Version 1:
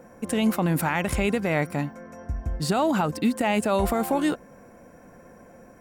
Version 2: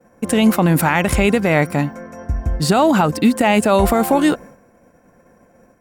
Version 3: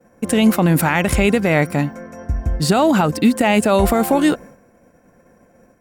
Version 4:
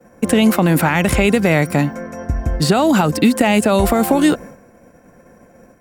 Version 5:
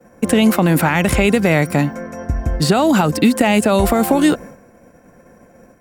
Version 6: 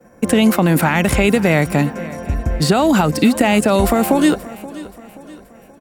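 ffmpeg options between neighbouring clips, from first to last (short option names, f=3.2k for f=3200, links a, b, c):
-af "agate=range=-33dB:threshold=-40dB:ratio=3:detection=peak,volume=9dB"
-af "equalizer=f=980:w=1.5:g=-2.5"
-filter_complex "[0:a]acrossover=split=260|3700[a][b][c];[a]acompressor=threshold=-22dB:ratio=4[d];[b]acompressor=threshold=-19dB:ratio=4[e];[c]acompressor=threshold=-30dB:ratio=4[f];[d][e][f]amix=inputs=3:normalize=0,volume=5.5dB"
-af anull
-af "aecho=1:1:528|1056|1584|2112:0.126|0.0567|0.0255|0.0115"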